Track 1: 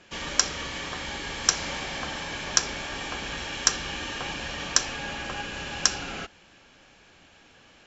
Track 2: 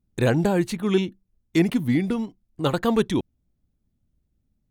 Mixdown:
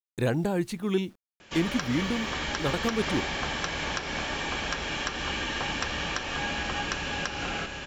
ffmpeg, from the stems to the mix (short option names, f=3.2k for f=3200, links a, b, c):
-filter_complex "[0:a]acrossover=split=3800[a][b];[b]acompressor=threshold=-44dB:ratio=4:attack=1:release=60[c];[a][c]amix=inputs=2:normalize=0,adelay=1400,volume=1.5dB,asplit=2[d][e];[e]volume=-4dB[f];[1:a]acrusher=bits=8:mix=0:aa=0.000001,volume=-5.5dB[g];[f]aecho=0:1:754:1[h];[d][g][h]amix=inputs=3:normalize=0,alimiter=limit=-14.5dB:level=0:latency=1:release=185"